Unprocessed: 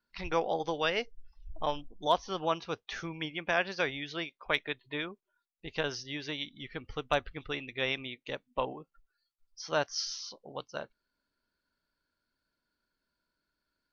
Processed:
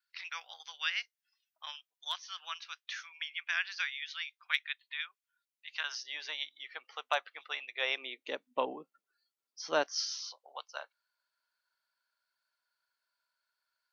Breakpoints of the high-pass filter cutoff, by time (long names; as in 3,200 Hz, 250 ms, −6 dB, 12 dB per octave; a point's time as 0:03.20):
high-pass filter 24 dB per octave
0:05.68 1,500 Hz
0:06.09 680 Hz
0:07.67 680 Hz
0:08.46 220 Hz
0:09.78 220 Hz
0:10.36 730 Hz